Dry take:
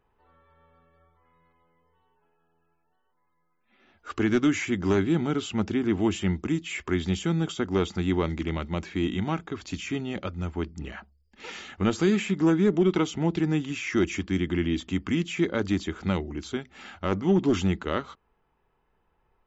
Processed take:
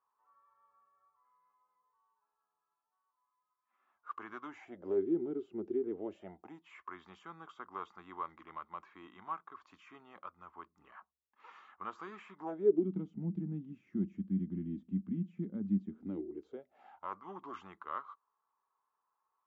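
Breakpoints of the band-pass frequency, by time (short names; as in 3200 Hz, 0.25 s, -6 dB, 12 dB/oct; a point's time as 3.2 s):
band-pass, Q 7.8
4.41 s 1100 Hz
5.07 s 370 Hz
5.72 s 370 Hz
6.78 s 1100 Hz
12.35 s 1100 Hz
12.94 s 200 Hz
15.84 s 200 Hz
17.14 s 1100 Hz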